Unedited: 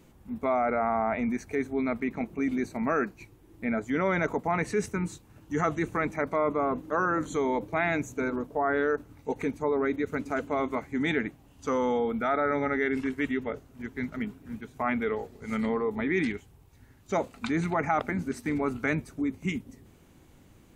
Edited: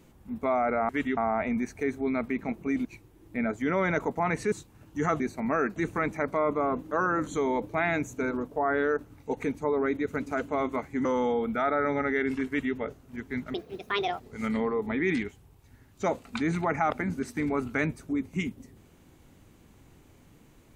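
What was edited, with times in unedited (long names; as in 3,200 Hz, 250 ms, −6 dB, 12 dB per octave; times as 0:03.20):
0:02.57–0:03.13: move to 0:05.75
0:04.80–0:05.07: remove
0:11.04–0:11.71: remove
0:13.13–0:13.41: duplicate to 0:00.89
0:14.20–0:15.29: play speed 165%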